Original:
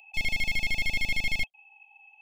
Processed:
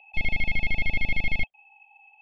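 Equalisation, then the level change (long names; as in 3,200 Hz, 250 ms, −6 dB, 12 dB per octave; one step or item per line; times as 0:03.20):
high-frequency loss of the air 440 metres
+6.0 dB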